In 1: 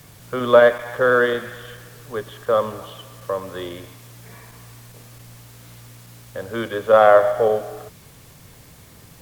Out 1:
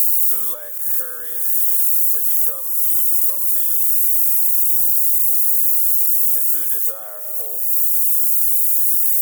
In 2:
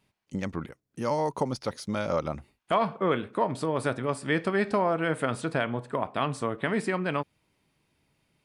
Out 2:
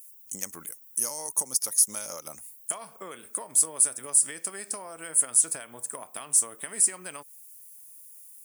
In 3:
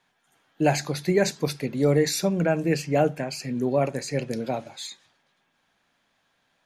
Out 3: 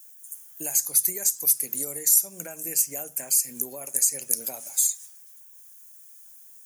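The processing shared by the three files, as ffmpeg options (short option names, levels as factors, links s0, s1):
-af "aemphasis=mode=production:type=riaa,acompressor=threshold=0.0316:ratio=10,aexciter=amount=11.8:drive=6.8:freq=6000,volume=0.447"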